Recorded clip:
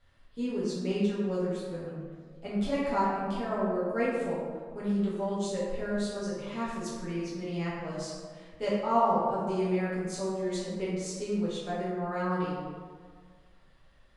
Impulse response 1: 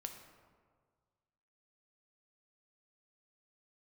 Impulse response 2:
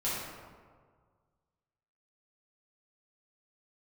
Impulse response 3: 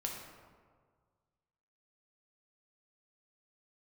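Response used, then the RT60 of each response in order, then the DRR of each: 2; 1.7, 1.7, 1.7 seconds; 4.5, −10.0, −0.5 decibels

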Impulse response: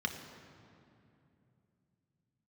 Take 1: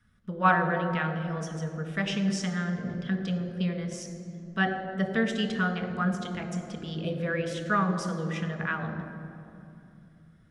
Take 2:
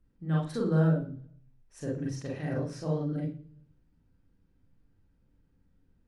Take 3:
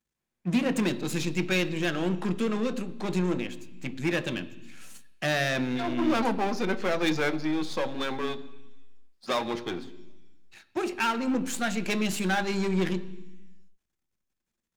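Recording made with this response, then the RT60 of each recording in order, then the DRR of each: 1; 2.8, 0.45, 1.0 seconds; 3.5, −4.0, 10.0 decibels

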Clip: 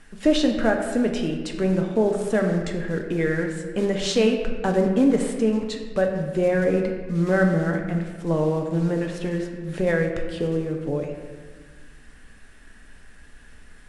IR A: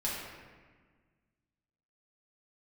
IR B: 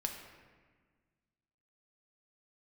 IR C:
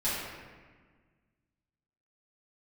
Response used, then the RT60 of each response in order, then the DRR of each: B; 1.5, 1.5, 1.5 seconds; −7.5, 2.5, −13.0 decibels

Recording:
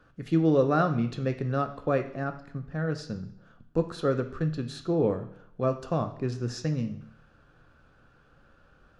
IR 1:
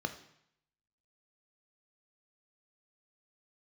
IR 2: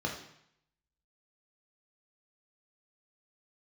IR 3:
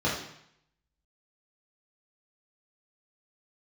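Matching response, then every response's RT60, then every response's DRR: 1; 0.70, 0.70, 0.70 seconds; 7.0, −0.5, −7.5 decibels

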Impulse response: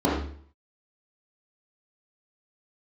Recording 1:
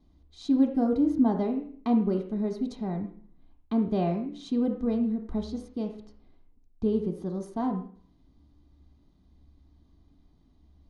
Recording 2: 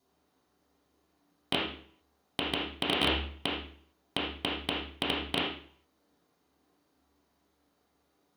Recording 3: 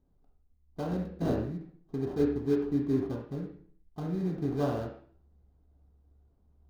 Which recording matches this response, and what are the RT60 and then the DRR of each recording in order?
2; 0.50, 0.50, 0.50 seconds; 4.0, −6.5, −1.0 decibels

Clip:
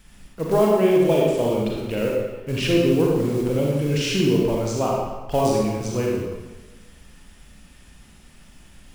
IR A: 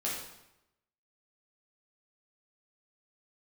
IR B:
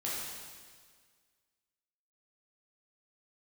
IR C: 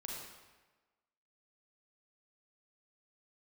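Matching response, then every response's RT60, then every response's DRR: C; 0.85, 1.7, 1.3 seconds; −6.0, −7.0, −2.5 decibels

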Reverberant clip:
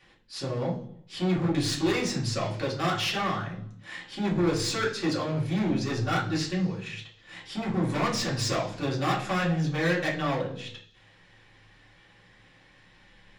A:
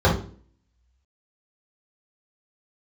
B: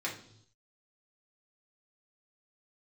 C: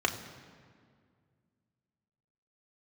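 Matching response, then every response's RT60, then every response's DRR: B; 0.45 s, non-exponential decay, 2.0 s; −6.5, −4.0, 2.5 decibels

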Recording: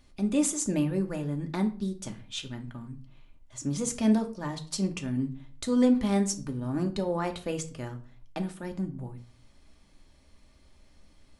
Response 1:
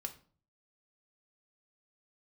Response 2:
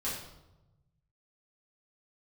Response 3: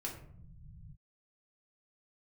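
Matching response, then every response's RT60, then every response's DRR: 1; 0.45 s, 1.0 s, non-exponential decay; 4.0, −9.0, −2.5 decibels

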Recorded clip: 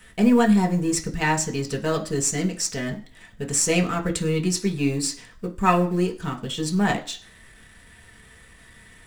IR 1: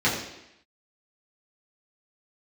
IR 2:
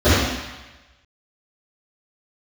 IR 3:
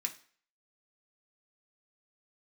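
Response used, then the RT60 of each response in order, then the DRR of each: 3; 0.85 s, 1.1 s, non-exponential decay; −7.5, −18.5, 1.0 decibels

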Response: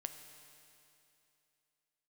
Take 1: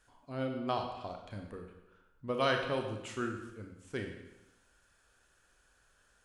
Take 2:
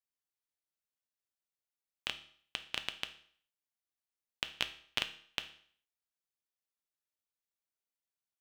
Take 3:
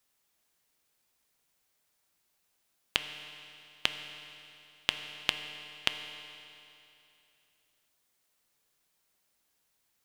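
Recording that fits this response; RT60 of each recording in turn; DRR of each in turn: 3; 0.95, 0.55, 2.8 seconds; 3.0, 8.5, 7.0 decibels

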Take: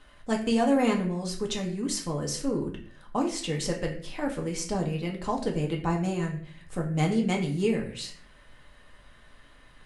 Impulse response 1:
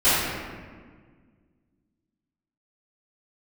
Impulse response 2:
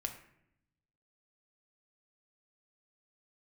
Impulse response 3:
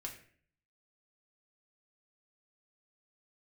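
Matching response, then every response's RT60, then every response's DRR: 3; 1.7, 0.75, 0.50 seconds; −17.5, 4.0, −1.0 decibels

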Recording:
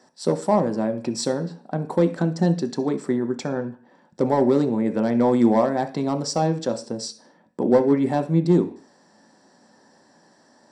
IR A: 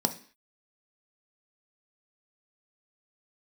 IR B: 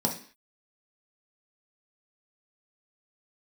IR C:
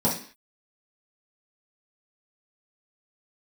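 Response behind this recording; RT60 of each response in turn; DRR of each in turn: A; 0.45, 0.45, 0.45 seconds; 6.5, −0.5, −8.0 decibels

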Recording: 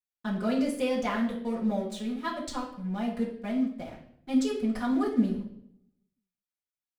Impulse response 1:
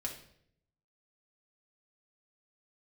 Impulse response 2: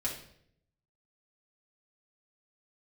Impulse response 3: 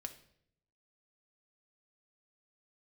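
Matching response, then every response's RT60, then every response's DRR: 2; 0.70, 0.65, 0.70 seconds; −1.5, −5.5, 5.5 decibels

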